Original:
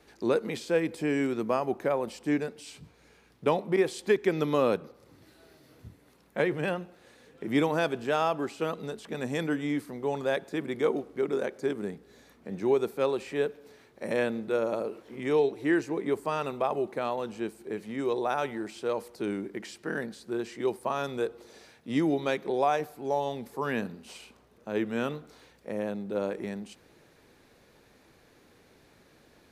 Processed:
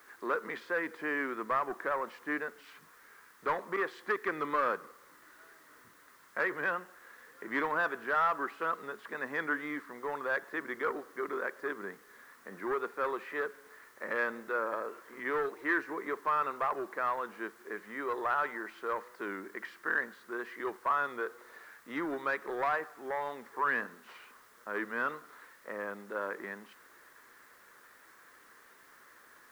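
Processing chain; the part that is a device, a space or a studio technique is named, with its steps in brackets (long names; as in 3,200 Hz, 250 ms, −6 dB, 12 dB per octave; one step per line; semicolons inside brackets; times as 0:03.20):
tape answering machine (band-pass filter 330–3,000 Hz; soft clipping −23.5 dBFS, distortion −14 dB; tape wow and flutter; white noise bed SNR 25 dB)
flat-topped bell 1,400 Hz +13.5 dB 1.2 octaves
level −5.5 dB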